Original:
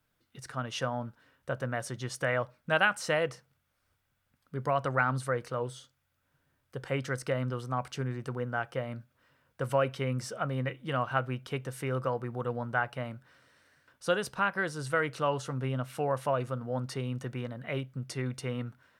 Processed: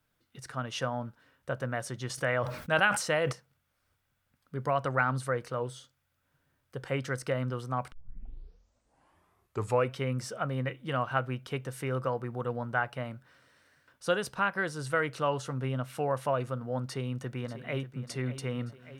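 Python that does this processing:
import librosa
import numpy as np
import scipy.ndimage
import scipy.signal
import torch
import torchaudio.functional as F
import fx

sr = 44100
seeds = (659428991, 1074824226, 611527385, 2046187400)

y = fx.sustainer(x, sr, db_per_s=79.0, at=(2.09, 3.31), fade=0.02)
y = fx.echo_throw(y, sr, start_s=16.84, length_s=1.15, ms=590, feedback_pct=70, wet_db=-13.0)
y = fx.edit(y, sr, fx.tape_start(start_s=7.92, length_s=2.03), tone=tone)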